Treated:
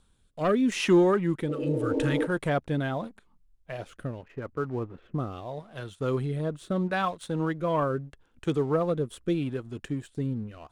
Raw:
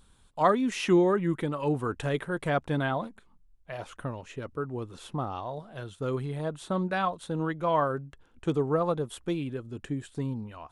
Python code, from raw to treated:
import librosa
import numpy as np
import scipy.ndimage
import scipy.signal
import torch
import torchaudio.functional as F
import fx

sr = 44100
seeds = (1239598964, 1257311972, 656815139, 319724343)

y = fx.spec_repair(x, sr, seeds[0], start_s=1.52, length_s=0.72, low_hz=200.0, high_hz=1100.0, source='before')
y = fx.lowpass(y, sr, hz=2200.0, slope=24, at=(4.23, 5.2))
y = fx.leveller(y, sr, passes=1)
y = fx.rotary(y, sr, hz=0.8)